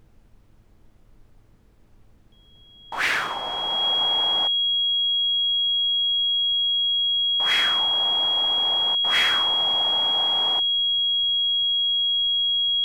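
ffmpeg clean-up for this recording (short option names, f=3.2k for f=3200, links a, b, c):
-af "bandreject=f=107.8:t=h:w=4,bandreject=f=215.6:t=h:w=4,bandreject=f=323.4:t=h:w=4,bandreject=f=431.2:t=h:w=4,bandreject=f=3.3k:w=30,agate=range=-21dB:threshold=-45dB"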